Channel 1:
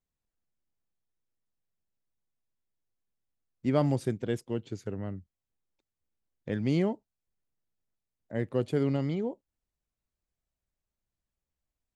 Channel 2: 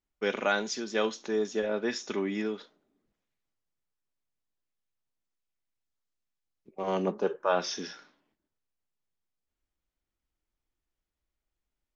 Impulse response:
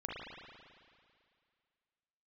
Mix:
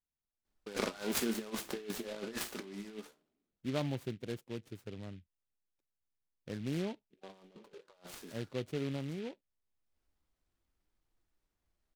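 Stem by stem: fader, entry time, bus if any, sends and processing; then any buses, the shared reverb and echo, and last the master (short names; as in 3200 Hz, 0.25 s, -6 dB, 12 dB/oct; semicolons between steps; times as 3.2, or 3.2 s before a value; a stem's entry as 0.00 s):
-9.5 dB, 0.00 s, no send, dry
+2.5 dB, 0.45 s, no send, tone controls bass +1 dB, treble -3 dB; negative-ratio compressor -35 dBFS, ratio -0.5; flange 0.28 Hz, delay 8.6 ms, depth 9.6 ms, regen +60%; auto duck -16 dB, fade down 1.55 s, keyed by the first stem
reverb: off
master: noise-modulated delay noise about 2500 Hz, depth 0.078 ms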